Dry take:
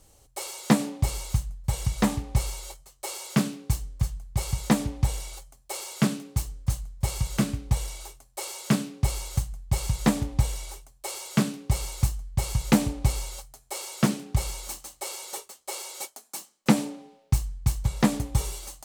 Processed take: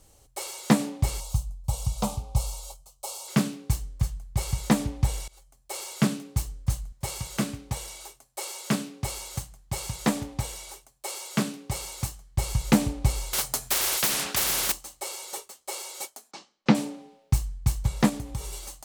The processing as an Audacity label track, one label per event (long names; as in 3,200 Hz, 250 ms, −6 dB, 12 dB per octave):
1.200000	3.280000	phaser with its sweep stopped centre 750 Hz, stages 4
5.280000	5.800000	fade in, from −22 dB
6.920000	12.380000	high-pass filter 220 Hz 6 dB per octave
13.330000	14.720000	every bin compressed towards the loudest bin 10 to 1
16.310000	16.750000	low-pass filter 5,100 Hz 24 dB per octave
18.090000	18.530000	downward compressor 2 to 1, threshold −34 dBFS